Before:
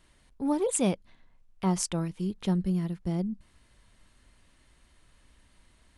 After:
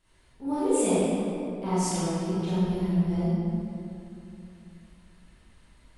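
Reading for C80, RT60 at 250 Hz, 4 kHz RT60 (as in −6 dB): −3.5 dB, 3.1 s, 1.6 s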